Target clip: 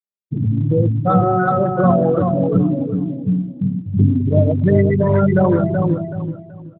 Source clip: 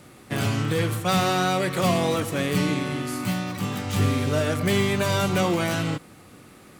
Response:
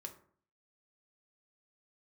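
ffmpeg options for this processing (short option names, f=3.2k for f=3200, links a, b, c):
-filter_complex "[0:a]afftfilt=real='re*gte(hypot(re,im),0.251)':imag='im*gte(hypot(re,im),0.251)':win_size=1024:overlap=0.75,highpass=f=41:w=0.5412,highpass=f=41:w=1.3066,asplit=2[a][b];[b]aecho=0:1:377|754|1131|1508:0.562|0.157|0.0441|0.0123[c];[a][c]amix=inputs=2:normalize=0,volume=9dB" -ar 8000 -c:a libopencore_amrnb -b:a 12200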